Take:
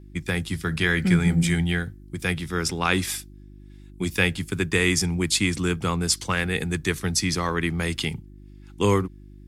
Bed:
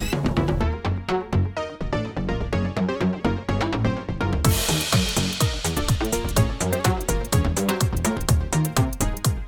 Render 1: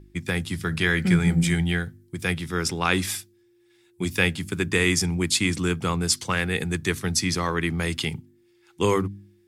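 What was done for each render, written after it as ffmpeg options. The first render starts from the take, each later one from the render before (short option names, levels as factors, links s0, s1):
-af "bandreject=f=50:t=h:w=4,bandreject=f=100:t=h:w=4,bandreject=f=150:t=h:w=4,bandreject=f=200:t=h:w=4,bandreject=f=250:t=h:w=4,bandreject=f=300:t=h:w=4"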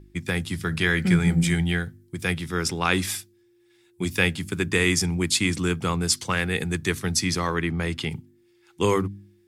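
-filter_complex "[0:a]asettb=1/sr,asplit=3[s0][s1][s2];[s0]atrim=end=7.614[s3];[s1]atrim=start=7.61:end=8.11,asetpts=PTS-STARTPTS,afade=t=in:d=0.004:c=qsin,afade=t=out:st=0.496:d=0.004:c=qsin,highshelf=f=4100:g=-9.5[s4];[s2]atrim=start=8.106[s5];[s3][s4]acrossfade=d=0.004:c1=hsin:c2=qsin[s6];[s6][s5]acrossfade=d=0.004:c1=qsin:c2=hsin"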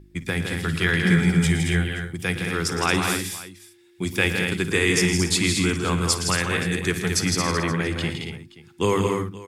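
-af "aecho=1:1:54|114|162|223|279|525:0.15|0.251|0.501|0.501|0.211|0.112"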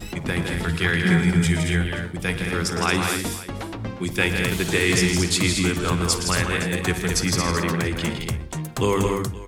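-filter_complex "[1:a]volume=0.376[s0];[0:a][s0]amix=inputs=2:normalize=0"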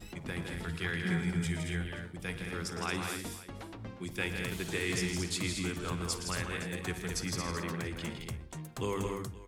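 -af "volume=0.211"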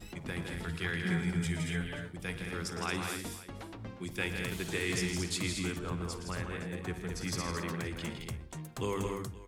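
-filter_complex "[0:a]asettb=1/sr,asplit=3[s0][s1][s2];[s0]atrim=end=1.594[s3];[s1]atrim=start=1.59:end=2.09,asetpts=PTS-STARTPTS,afade=t=in:d=0.004:c=qsin,afade=t=out:st=0.496:d=0.004:c=qsin,aecho=1:1:7.1:0.65,atrim=end_sample=22050[s4];[s2]atrim=start=2.086[s5];[s3][s4]acrossfade=d=0.004:c1=hsin:c2=qsin[s6];[s6][s5]acrossfade=d=0.004:c1=qsin:c2=hsin,asettb=1/sr,asplit=3[s7][s8][s9];[s7]atrim=end=5.794[s10];[s8]atrim=start=5.79:end=7.21,asetpts=PTS-STARTPTS,afade=t=in:d=0.004:c=qsin,afade=t=out:st=1.416:d=0.004:c=qsin,highshelf=f=2000:g=-9.5[s11];[s9]atrim=start=7.206[s12];[s10][s11]acrossfade=d=0.004:c1=hsin:c2=qsin[s13];[s13][s12]acrossfade=d=0.004:c1=qsin:c2=hsin"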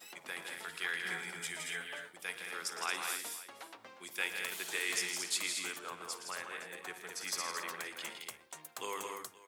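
-af "highpass=700,highshelf=f=11000:g=9.5"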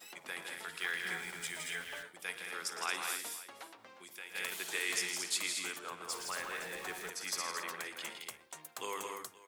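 -filter_complex "[0:a]asettb=1/sr,asplit=3[s0][s1][s2];[s0]atrim=end=0.804[s3];[s1]atrim=start=0.8:end=2.03,asetpts=PTS-STARTPTS,afade=t=in:d=0.004:c=qsin,afade=t=out:st=1.226:d=0.004:c=qsin,aeval=exprs='val(0)*gte(abs(val(0)),0.00398)':c=same[s4];[s2]atrim=start=2.026[s5];[s3][s4]acrossfade=d=0.004:c1=hsin:c2=qsin[s6];[s6][s5]acrossfade=d=0.004:c1=qsin:c2=hsin,asplit=3[s7][s8][s9];[s7]afade=t=out:st=3.7:d=0.02[s10];[s8]acompressor=threshold=0.00251:ratio=2:attack=3.2:release=140:knee=1:detection=peak,afade=t=in:st=3.7:d=0.02,afade=t=out:st=4.34:d=0.02[s11];[s9]afade=t=in:st=4.34:d=0.02[s12];[s10][s11][s12]amix=inputs=3:normalize=0,asettb=1/sr,asplit=3[s13][s14][s15];[s13]atrim=end=6.094[s16];[s14]atrim=start=6.09:end=7.1,asetpts=PTS-STARTPTS,afade=t=in:d=0.004:c=qsin,afade=t=out:st=1.006:d=0.004:c=qsin,aeval=exprs='val(0)+0.5*0.00631*sgn(val(0))':c=same[s17];[s15]atrim=start=7.096[s18];[s16][s17]acrossfade=d=0.004:c1=hsin:c2=qsin[s19];[s19][s18]acrossfade=d=0.004:c1=qsin:c2=hsin"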